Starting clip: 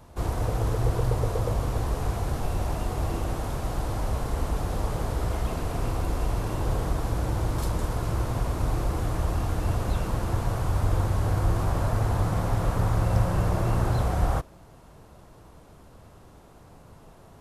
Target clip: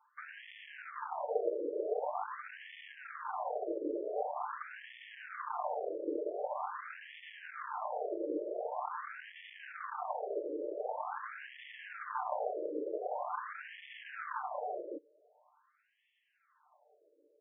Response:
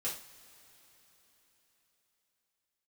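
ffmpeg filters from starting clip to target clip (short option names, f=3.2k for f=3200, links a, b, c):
-filter_complex "[0:a]aemphasis=mode=production:type=50fm,afwtdn=0.0224,aecho=1:1:6.7:0.76,acompressor=threshold=-28dB:ratio=5,asplit=2[a][b];[b]aecho=0:1:564:0.708[c];[a][c]amix=inputs=2:normalize=0,aeval=exprs='(tanh(22.4*val(0)+0.65)-tanh(0.65))/22.4':c=same,acrossover=split=110|990[d][e][f];[d]acrusher=bits=6:mix=0:aa=0.000001[g];[g][e][f]amix=inputs=3:normalize=0,afftfilt=real='re*between(b*sr/1024,420*pow(2500/420,0.5+0.5*sin(2*PI*0.45*pts/sr))/1.41,420*pow(2500/420,0.5+0.5*sin(2*PI*0.45*pts/sr))*1.41)':imag='im*between(b*sr/1024,420*pow(2500/420,0.5+0.5*sin(2*PI*0.45*pts/sr))/1.41,420*pow(2500/420,0.5+0.5*sin(2*PI*0.45*pts/sr))*1.41)':win_size=1024:overlap=0.75,volume=7dB"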